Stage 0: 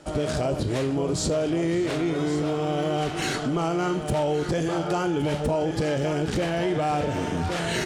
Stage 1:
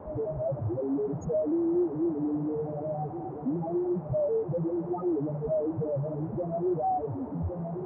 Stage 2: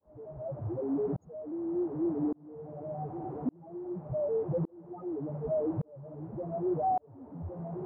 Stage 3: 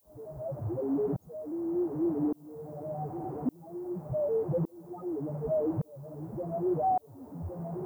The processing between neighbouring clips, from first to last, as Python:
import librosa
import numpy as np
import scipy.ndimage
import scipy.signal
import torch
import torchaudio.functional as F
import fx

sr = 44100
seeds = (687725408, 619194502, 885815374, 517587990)

y1 = fx.spec_topn(x, sr, count=2)
y1 = fx.dmg_noise_band(y1, sr, seeds[0], low_hz=75.0, high_hz=820.0, level_db=-44.0)
y2 = fx.tremolo_shape(y1, sr, shape='saw_up', hz=0.86, depth_pct=100)
y3 = fx.dmg_noise_colour(y2, sr, seeds[1], colour='violet', level_db=-71.0)
y3 = y3 * librosa.db_to_amplitude(1.5)